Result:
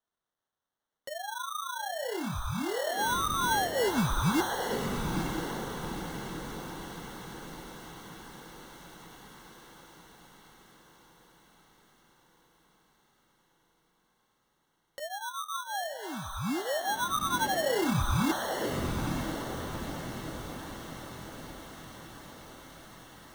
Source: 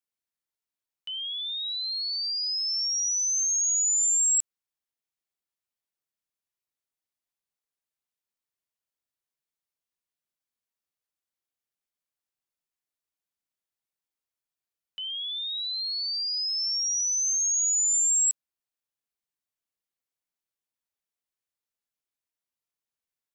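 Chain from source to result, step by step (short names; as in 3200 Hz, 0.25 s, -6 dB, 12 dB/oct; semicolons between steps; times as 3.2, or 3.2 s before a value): flange 0.17 Hz, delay 5.8 ms, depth 9.6 ms, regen +1%; two-slope reverb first 0.35 s, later 1.7 s, from -25 dB, DRR 14 dB; sample-and-hold 18×; diffused feedback echo 0.929 s, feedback 55%, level -4 dB; mismatched tape noise reduction encoder only; gain -1.5 dB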